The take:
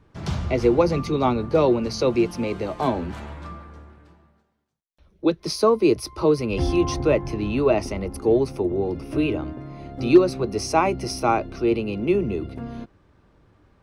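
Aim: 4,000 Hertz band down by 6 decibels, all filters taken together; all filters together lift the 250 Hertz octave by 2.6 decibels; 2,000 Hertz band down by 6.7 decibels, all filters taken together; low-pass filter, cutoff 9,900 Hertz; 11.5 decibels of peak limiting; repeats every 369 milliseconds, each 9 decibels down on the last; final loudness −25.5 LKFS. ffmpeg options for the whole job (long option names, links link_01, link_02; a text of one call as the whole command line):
ffmpeg -i in.wav -af "lowpass=9900,equalizer=frequency=250:width_type=o:gain=4,equalizer=frequency=2000:width_type=o:gain=-7,equalizer=frequency=4000:width_type=o:gain=-6.5,alimiter=limit=-13dB:level=0:latency=1,aecho=1:1:369|738|1107|1476:0.355|0.124|0.0435|0.0152,volume=-2dB" out.wav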